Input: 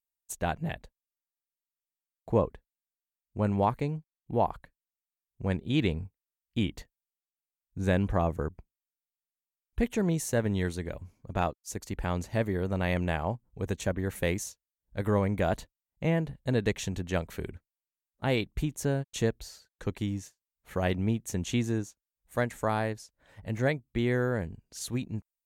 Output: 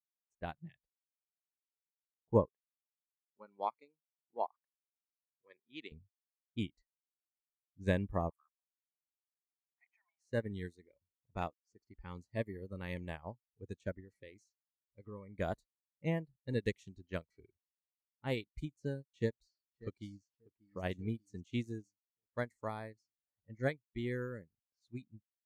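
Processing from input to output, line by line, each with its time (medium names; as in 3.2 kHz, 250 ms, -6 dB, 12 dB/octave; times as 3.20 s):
2.47–5.92 s: frequency weighting A
8.30–10.26 s: steep high-pass 710 Hz 96 dB/octave
14.00–15.35 s: compression 2:1, threshold -30 dBFS
19.12–20.22 s: echo throw 590 ms, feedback 50%, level -8 dB
whole clip: level-controlled noise filter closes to 1.3 kHz, open at -25 dBFS; spectral noise reduction 18 dB; upward expansion 2.5:1, over -38 dBFS; trim -1 dB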